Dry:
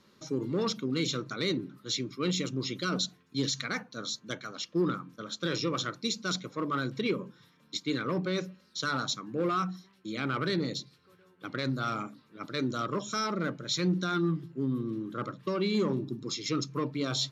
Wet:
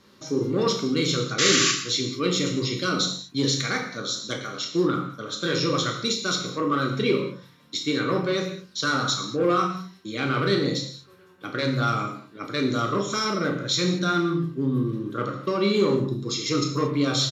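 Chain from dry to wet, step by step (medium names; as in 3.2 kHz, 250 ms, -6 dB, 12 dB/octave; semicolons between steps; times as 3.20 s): doubling 35 ms -12.5 dB; painted sound noise, 1.38–1.72 s, 1.1–7.4 kHz -28 dBFS; gated-style reverb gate 250 ms falling, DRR 1.5 dB; trim +5 dB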